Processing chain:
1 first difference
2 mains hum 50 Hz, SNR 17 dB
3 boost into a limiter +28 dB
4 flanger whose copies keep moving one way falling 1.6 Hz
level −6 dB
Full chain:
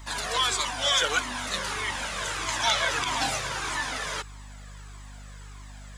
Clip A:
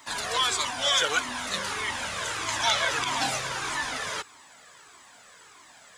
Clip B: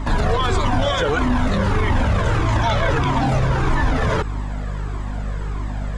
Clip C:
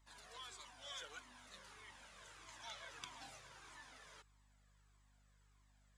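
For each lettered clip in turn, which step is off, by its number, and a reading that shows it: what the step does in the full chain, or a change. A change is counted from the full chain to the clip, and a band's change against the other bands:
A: 2, 125 Hz band −4.0 dB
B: 1, 8 kHz band −18.0 dB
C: 3, change in crest factor +8.5 dB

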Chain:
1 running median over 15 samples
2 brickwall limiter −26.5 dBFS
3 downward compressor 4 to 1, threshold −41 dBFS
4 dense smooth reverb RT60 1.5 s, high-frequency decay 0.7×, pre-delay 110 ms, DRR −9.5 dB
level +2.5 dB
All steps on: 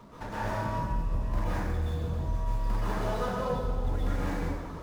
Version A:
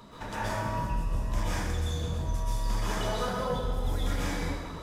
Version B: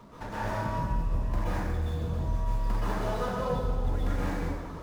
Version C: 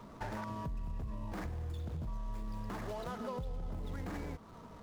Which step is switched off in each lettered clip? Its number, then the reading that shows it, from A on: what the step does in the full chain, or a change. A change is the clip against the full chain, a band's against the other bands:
1, 4 kHz band +9.0 dB
2, average gain reduction 2.0 dB
4, 250 Hz band +2.5 dB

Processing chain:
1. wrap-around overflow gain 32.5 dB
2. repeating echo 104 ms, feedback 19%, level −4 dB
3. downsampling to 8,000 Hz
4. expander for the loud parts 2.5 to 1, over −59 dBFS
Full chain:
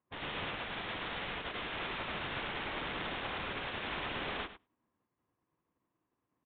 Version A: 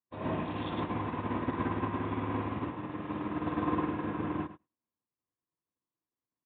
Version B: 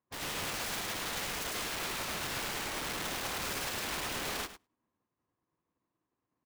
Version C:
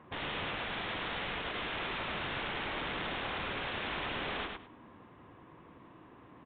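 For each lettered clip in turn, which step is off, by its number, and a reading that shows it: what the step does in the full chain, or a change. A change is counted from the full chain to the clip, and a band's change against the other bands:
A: 1, change in crest factor +4.0 dB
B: 3, 4 kHz band +3.0 dB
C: 4, change in momentary loudness spread +18 LU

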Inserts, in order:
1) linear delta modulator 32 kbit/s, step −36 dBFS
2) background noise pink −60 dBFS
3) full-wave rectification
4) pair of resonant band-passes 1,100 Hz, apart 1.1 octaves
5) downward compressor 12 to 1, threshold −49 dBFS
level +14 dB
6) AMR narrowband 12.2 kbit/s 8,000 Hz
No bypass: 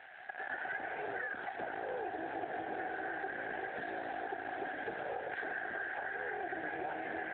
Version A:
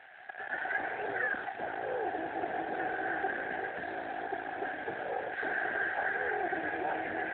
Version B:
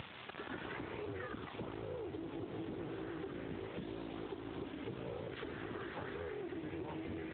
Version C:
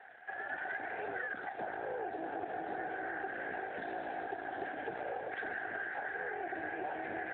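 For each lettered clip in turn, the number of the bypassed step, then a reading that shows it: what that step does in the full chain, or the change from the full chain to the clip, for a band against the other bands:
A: 5, average gain reduction 4.0 dB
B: 4, 2 kHz band −15.5 dB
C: 1, 4 kHz band −3.0 dB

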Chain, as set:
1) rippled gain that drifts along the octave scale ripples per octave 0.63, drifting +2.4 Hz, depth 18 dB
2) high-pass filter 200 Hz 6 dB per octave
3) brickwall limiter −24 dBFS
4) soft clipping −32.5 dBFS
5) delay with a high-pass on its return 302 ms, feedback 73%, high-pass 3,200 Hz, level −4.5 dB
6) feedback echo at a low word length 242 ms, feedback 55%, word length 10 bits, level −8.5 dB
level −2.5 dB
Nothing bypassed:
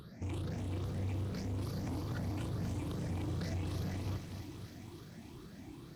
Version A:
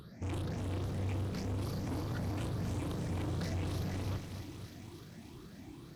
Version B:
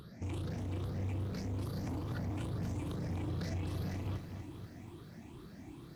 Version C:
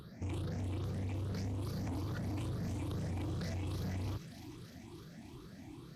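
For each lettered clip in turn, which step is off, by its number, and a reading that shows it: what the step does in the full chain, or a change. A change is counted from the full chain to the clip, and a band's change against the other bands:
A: 3, average gain reduction 3.5 dB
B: 5, 8 kHz band −2.5 dB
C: 6, change in crest factor −2.0 dB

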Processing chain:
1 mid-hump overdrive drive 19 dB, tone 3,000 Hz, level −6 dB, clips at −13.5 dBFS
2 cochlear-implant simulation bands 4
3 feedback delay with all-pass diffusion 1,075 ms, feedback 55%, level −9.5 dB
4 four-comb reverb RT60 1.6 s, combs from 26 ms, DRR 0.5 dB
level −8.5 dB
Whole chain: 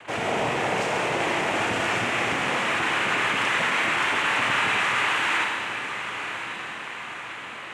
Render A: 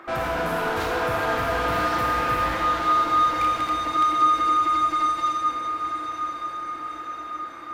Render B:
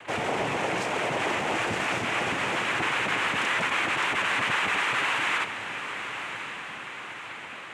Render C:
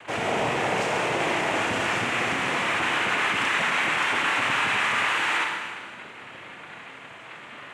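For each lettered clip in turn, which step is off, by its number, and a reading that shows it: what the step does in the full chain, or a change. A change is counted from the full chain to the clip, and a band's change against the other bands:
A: 2, 1 kHz band +8.5 dB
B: 4, change in integrated loudness −3.0 LU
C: 3, change in momentary loudness spread +7 LU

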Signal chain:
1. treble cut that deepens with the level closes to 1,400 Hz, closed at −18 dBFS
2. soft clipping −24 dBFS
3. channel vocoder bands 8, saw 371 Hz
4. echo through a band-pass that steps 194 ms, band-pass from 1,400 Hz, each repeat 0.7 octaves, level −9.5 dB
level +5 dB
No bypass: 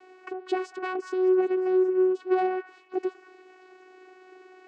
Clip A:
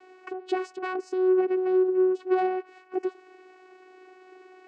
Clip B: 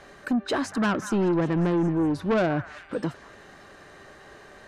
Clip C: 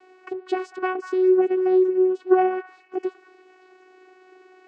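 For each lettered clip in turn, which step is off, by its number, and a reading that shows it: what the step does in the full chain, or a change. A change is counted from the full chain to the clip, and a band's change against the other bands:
4, echo-to-direct ratio −11.0 dB to none audible
3, change in crest factor −5.0 dB
2, distortion level −10 dB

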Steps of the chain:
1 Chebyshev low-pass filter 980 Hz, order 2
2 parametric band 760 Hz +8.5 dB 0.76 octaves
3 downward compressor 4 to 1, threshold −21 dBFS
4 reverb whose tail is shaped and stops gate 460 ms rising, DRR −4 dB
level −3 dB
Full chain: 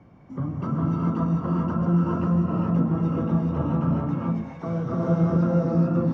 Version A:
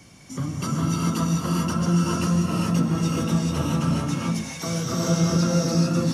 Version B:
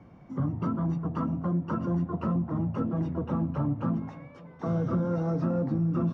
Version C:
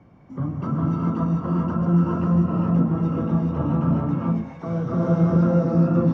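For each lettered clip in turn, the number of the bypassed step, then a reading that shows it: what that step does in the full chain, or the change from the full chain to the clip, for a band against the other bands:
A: 1, 2 kHz band +9.0 dB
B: 4, change in momentary loudness spread −3 LU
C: 3, average gain reduction 1.5 dB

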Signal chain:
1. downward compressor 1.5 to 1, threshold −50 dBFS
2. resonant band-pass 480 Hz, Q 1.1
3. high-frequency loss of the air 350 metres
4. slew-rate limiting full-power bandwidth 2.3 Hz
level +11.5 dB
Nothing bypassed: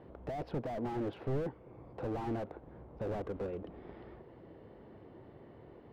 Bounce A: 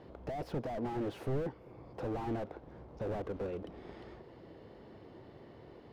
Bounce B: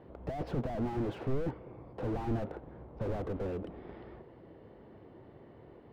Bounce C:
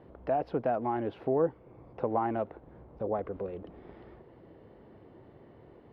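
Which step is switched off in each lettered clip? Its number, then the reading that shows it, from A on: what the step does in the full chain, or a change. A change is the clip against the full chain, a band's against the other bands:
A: 3, 4 kHz band +2.5 dB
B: 1, average gain reduction 4.5 dB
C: 4, 125 Hz band −7.5 dB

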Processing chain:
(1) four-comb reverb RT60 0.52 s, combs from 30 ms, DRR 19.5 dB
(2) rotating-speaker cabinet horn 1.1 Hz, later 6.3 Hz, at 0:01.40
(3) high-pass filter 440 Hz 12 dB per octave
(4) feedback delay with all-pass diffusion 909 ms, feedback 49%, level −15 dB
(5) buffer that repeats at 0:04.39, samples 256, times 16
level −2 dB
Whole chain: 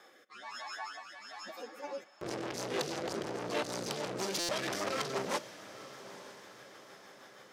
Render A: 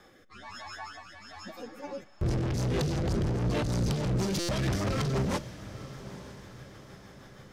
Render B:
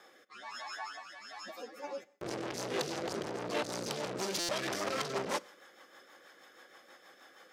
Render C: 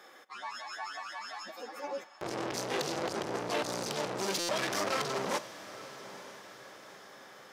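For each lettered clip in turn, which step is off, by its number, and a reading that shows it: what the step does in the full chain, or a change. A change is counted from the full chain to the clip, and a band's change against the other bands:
3, 125 Hz band +20.5 dB
4, change in momentary loudness spread +4 LU
2, change in crest factor −3.5 dB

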